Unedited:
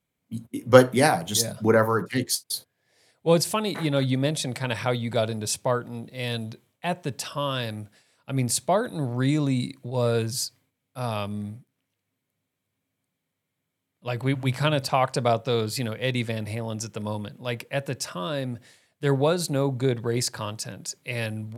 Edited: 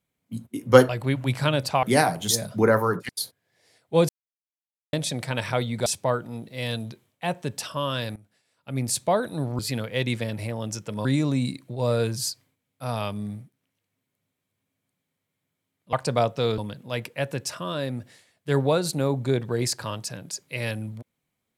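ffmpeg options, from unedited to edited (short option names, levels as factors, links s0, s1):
-filter_complex "[0:a]asplit=12[s0][s1][s2][s3][s4][s5][s6][s7][s8][s9][s10][s11];[s0]atrim=end=0.892[s12];[s1]atrim=start=14.078:end=15.022[s13];[s2]atrim=start=0.888:end=2.152[s14];[s3]atrim=start=2.418:end=3.42,asetpts=PTS-STARTPTS,afade=t=out:st=0.998:d=0.004:c=hsin[s15];[s4]atrim=start=3.42:end=4.26,asetpts=PTS-STARTPTS,volume=0[s16];[s5]atrim=start=4.26:end=5.192,asetpts=PTS-STARTPTS,afade=t=in:d=0.004:c=hsin[s17];[s6]atrim=start=5.468:end=7.77,asetpts=PTS-STARTPTS,afade=t=out:st=2.298:d=0.004:c=hsin:silence=0.125893[s18];[s7]atrim=start=7.77:end=9.202,asetpts=PTS-STARTPTS,afade=t=in:d=0.89:silence=0.125893[s19];[s8]atrim=start=15.668:end=17.132[s20];[s9]atrim=start=9.198:end=14.082[s21];[s10]atrim=start=15.018:end=15.672[s22];[s11]atrim=start=17.128[s23];[s12][s13]acrossfade=d=0.004:c1=hsin:c2=hsin[s24];[s24][s14]acrossfade=d=0.004:c1=hsin:c2=hsin[s25];[s15][s16][s17]concat=n=3:v=0:a=1[s26];[s25][s26]acrossfade=d=0.004:c1=hsin:c2=hsin[s27];[s18][s19]concat=n=2:v=0:a=1[s28];[s27][s28]acrossfade=d=0.004:c1=hsin:c2=hsin[s29];[s29][s20]acrossfade=d=0.004:c1=hsin:c2=hsin[s30];[s30][s21]acrossfade=d=0.004:c1=hsin:c2=hsin[s31];[s31][s22]acrossfade=d=0.004:c1=hsin:c2=hsin[s32];[s32][s23]acrossfade=d=0.004:c1=hsin:c2=hsin"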